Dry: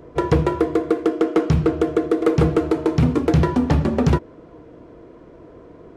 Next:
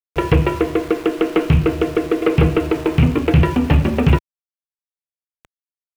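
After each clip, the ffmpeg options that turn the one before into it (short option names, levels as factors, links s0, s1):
-af "lowpass=f=2700:t=q:w=4.4,aeval=exprs='val(0)*gte(abs(val(0)),0.0266)':c=same,lowshelf=f=99:g=9"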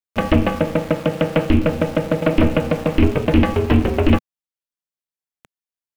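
-af "aeval=exprs='val(0)*sin(2*PI*160*n/s)':c=same,volume=1.26"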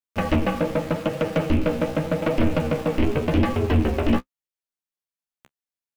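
-af "asoftclip=type=tanh:threshold=0.335,flanger=delay=7.6:depth=9.9:regen=20:speed=0.85:shape=triangular,volume=1.12"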